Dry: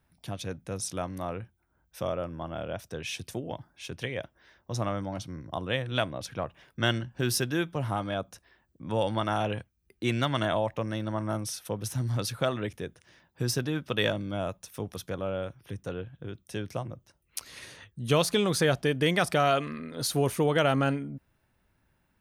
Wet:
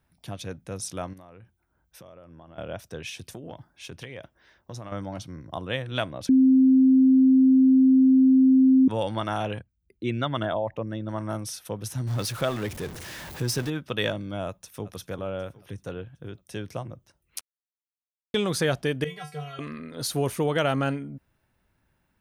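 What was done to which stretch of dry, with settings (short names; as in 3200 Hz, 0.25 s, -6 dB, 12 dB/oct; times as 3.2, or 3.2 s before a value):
1.13–2.58 compressor, threshold -45 dBFS
3.09–4.92 compressor, threshold -34 dBFS
6.29–8.88 bleep 262 Hz -13.5 dBFS
9.59–11.09 formant sharpening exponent 1.5
12.07–13.7 zero-crossing step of -34 dBFS
14.47–14.87 echo throw 0.38 s, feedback 55%, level -15 dB
17.41–18.34 mute
19.04–19.59 resonator 150 Hz, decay 0.23 s, harmonics odd, mix 100%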